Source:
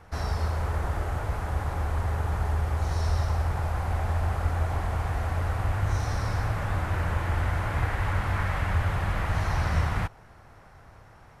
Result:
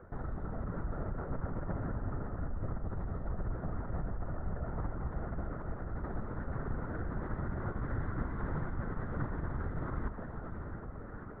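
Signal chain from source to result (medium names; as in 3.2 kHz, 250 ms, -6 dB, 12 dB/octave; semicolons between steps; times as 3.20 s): tracing distortion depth 0.14 ms; low-pass 1.7 kHz 12 dB/octave; tilt shelf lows +5 dB, about 800 Hz; band-stop 920 Hz, Q 7.7; reverse; compression 10:1, threshold -34 dBFS, peak gain reduction 20 dB; reverse; static phaser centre 550 Hz, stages 8; echo that smears into a reverb 603 ms, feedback 45%, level -7 dB; LPC vocoder at 8 kHz whisper; trim +5 dB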